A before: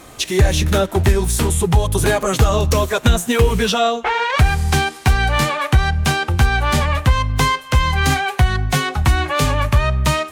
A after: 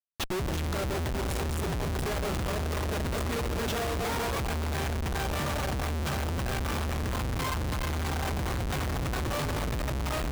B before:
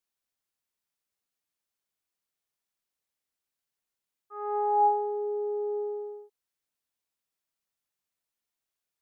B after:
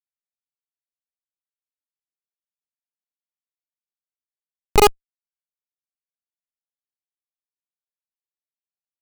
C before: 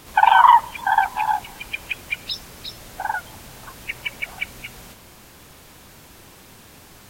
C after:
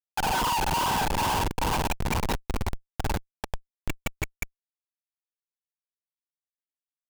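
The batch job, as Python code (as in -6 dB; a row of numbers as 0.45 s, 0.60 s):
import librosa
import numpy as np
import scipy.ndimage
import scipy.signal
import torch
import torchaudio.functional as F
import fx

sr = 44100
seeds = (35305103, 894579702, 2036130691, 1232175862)

y = fx.reverse_delay_fb(x, sr, ms=218, feedback_pct=81, wet_db=-7)
y = fx.schmitt(y, sr, flips_db=-19.0)
y = y * 10.0 ** (-30 / 20.0) / np.sqrt(np.mean(np.square(y)))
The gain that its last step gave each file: -16.5 dB, +24.0 dB, -4.0 dB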